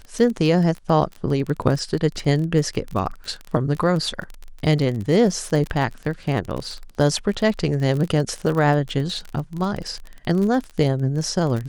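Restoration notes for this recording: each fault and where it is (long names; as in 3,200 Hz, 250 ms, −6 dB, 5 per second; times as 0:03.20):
surface crackle 32 per second −26 dBFS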